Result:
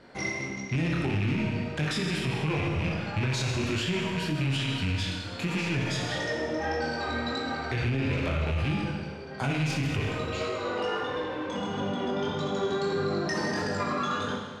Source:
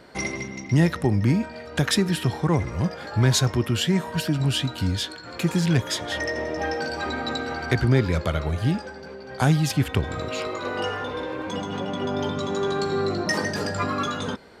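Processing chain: rattling part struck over -21 dBFS, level -15 dBFS; chorus 1.6 Hz, delay 20 ms, depth 5 ms; Schroeder reverb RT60 1.4 s, combs from 26 ms, DRR 1.5 dB; in parallel at -7 dB: soft clip -22 dBFS, distortion -10 dB; on the sum: limiter -16 dBFS, peak gain reduction 11 dB; air absorption 52 m; gain -4 dB

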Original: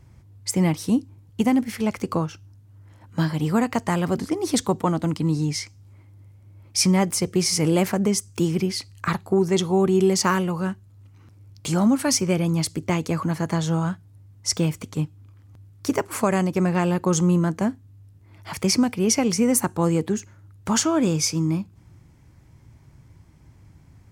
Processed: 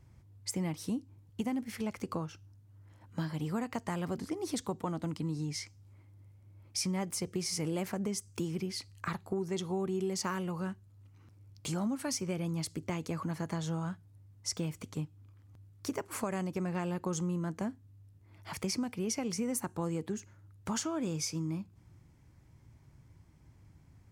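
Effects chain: compressor 2.5:1, threshold -25 dBFS, peak gain reduction 7.5 dB; gain -8.5 dB

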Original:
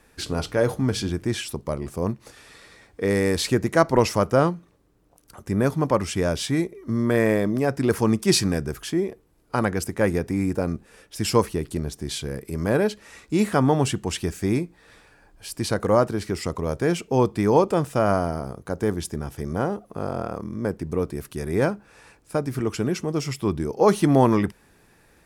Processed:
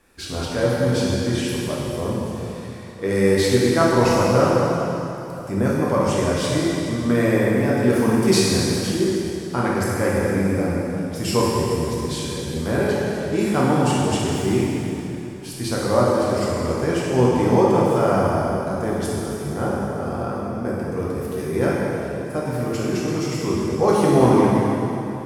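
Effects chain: plate-style reverb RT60 3.2 s, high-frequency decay 0.85×, DRR -6.5 dB; gain -4 dB

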